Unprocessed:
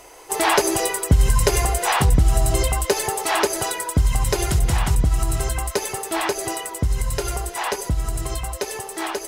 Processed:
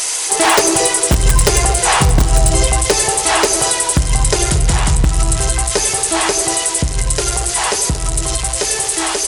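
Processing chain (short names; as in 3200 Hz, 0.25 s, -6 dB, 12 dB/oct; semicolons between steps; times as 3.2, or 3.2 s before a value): switching spikes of -13.5 dBFS; notches 50/100 Hz; on a send: narrowing echo 0.23 s, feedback 48%, band-pass 480 Hz, level -14.5 dB; on the sum: downsampling 22050 Hz; in parallel at -4 dB: wrapped overs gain 8.5 dB; on the sum: shoebox room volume 3800 m³, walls mixed, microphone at 0.57 m; gain +1.5 dB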